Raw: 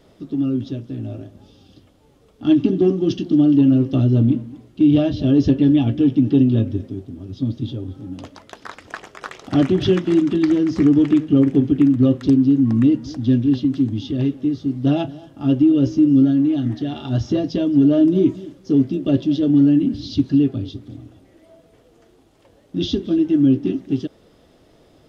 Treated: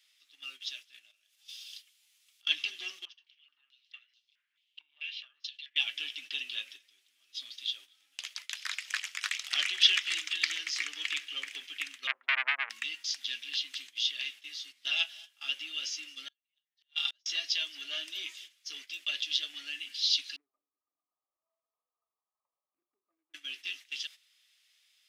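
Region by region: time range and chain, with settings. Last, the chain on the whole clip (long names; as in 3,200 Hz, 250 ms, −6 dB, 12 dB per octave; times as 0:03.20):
0:01.11–0:02.47: high-shelf EQ 3,600 Hz +7.5 dB + downward compressor 5 to 1, threshold −42 dBFS
0:03.05–0:05.76: downward compressor, threshold −17 dBFS + band-pass on a step sequencer 4.6 Hz 980–4,900 Hz
0:12.07–0:12.70: low-pass filter 1,000 Hz 24 dB per octave + saturating transformer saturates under 1,100 Hz
0:16.28–0:17.26: comb filter 5 ms + gate with flip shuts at −17 dBFS, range −40 dB
0:20.36–0:23.34: linear-phase brick-wall low-pass 1,300 Hz + downward compressor 1.5 to 1, threshold −47 dBFS
whole clip: Chebyshev high-pass filter 2,300 Hz, order 3; noise gate −56 dBFS, range −12 dB; level +9 dB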